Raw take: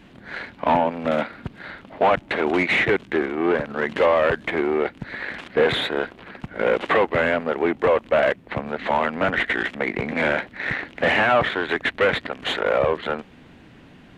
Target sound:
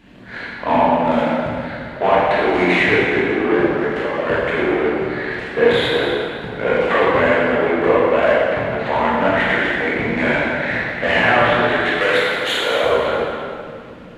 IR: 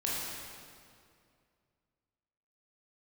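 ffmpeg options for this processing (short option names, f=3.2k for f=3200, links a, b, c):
-filter_complex "[0:a]asplit=3[a][b][c];[a]afade=t=out:st=3.71:d=0.02[d];[b]acompressor=threshold=-24dB:ratio=6,afade=t=in:st=3.71:d=0.02,afade=t=out:st=4.26:d=0.02[e];[c]afade=t=in:st=4.26:d=0.02[f];[d][e][f]amix=inputs=3:normalize=0,asplit=3[g][h][i];[g]afade=t=out:st=11.92:d=0.02[j];[h]aemphasis=mode=production:type=bsi,afade=t=in:st=11.92:d=0.02,afade=t=out:st=12.84:d=0.02[k];[i]afade=t=in:st=12.84:d=0.02[l];[j][k][l]amix=inputs=3:normalize=0[m];[1:a]atrim=start_sample=2205[n];[m][n]afir=irnorm=-1:irlink=0,volume=-1dB"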